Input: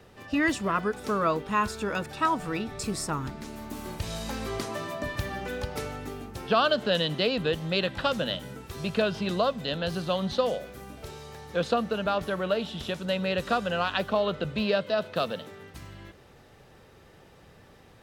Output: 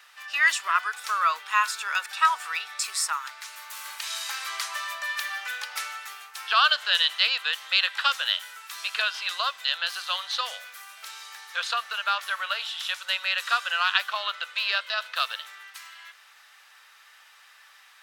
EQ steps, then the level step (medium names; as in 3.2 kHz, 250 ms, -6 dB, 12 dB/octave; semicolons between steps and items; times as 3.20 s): high-pass 1.2 kHz 24 dB/octave; +8.0 dB